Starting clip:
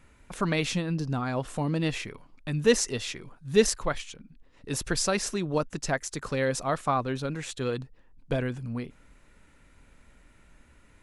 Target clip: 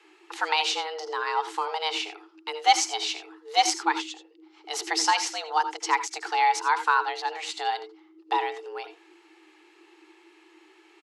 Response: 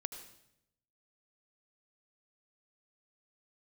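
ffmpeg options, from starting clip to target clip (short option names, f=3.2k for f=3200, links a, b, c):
-filter_complex "[0:a]firequalizer=gain_entry='entry(120,0);entry(240,-19);entry(520,9);entry(1200,4);entry(2500,8);entry(4400,9);entry(9500,-6)':delay=0.05:min_phase=1,afreqshift=310[a];[1:a]atrim=start_sample=2205,afade=t=out:st=0.14:d=0.01,atrim=end_sample=6615[b];[a][b]afir=irnorm=-1:irlink=0"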